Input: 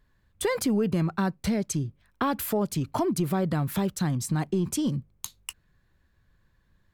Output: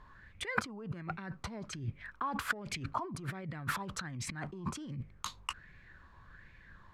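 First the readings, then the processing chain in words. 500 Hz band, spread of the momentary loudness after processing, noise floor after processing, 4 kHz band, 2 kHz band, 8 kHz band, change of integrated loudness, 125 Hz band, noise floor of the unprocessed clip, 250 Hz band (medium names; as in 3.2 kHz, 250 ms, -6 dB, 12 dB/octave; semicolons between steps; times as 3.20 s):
-17.5 dB, 21 LU, -59 dBFS, -5.0 dB, 0.0 dB, -11.0 dB, -11.5 dB, -12.5 dB, -67 dBFS, -17.0 dB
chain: compressor with a negative ratio -38 dBFS, ratio -1; distance through air 75 m; sweeping bell 1.3 Hz 980–2300 Hz +17 dB; trim -3 dB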